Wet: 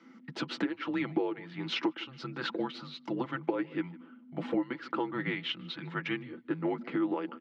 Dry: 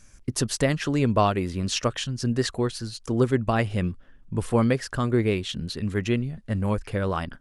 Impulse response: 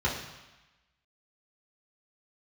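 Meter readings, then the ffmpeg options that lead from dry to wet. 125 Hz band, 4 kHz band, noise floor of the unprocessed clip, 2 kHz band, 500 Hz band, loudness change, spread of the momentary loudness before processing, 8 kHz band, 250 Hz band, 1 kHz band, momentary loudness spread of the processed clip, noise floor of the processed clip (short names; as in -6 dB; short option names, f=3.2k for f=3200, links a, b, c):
-18.5 dB, -6.0 dB, -52 dBFS, -5.0 dB, -10.0 dB, -9.0 dB, 8 LU, under -25 dB, -7.0 dB, -9.5 dB, 8 LU, -56 dBFS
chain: -filter_complex "[0:a]afreqshift=-260,highpass=f=310:w=0.5412,highpass=f=310:w=1.3066,equalizer=f=320:t=q:w=4:g=7,equalizer=f=720:t=q:w=4:g=-10,equalizer=f=1.1k:t=q:w=4:g=-7,equalizer=f=1.6k:t=q:w=4:g=-8,equalizer=f=2.5k:t=q:w=4:g=-9,lowpass=f=2.7k:w=0.5412,lowpass=f=2.7k:w=1.3066,asplit=2[a][b];[b]adelay=151.6,volume=-26dB,highshelf=f=4k:g=-3.41[c];[a][c]amix=inputs=2:normalize=0,acompressor=threshold=-37dB:ratio=10,aecho=1:1:6:0.51,volume=7.5dB"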